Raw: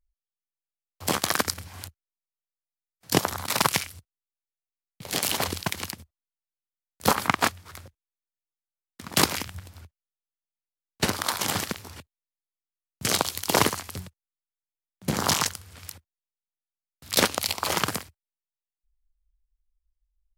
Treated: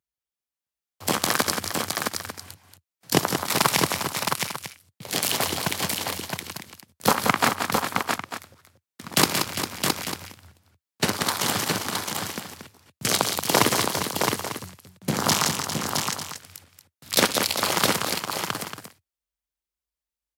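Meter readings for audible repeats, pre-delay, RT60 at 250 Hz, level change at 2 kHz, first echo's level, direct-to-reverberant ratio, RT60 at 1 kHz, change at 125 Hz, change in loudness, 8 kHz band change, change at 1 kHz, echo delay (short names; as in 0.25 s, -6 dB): 5, none, none, +4.0 dB, -18.0 dB, none, none, +3.0 dB, +1.5 dB, +4.0 dB, +4.0 dB, 62 ms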